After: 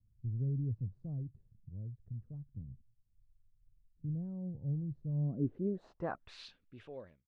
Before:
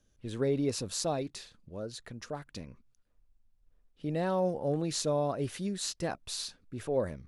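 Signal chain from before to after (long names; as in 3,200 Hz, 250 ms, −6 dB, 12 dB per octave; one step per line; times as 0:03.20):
fade-out on the ending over 1.99 s
low-pass filter sweep 120 Hz → 3,000 Hz, 0:05.11–0:06.47
level −1.5 dB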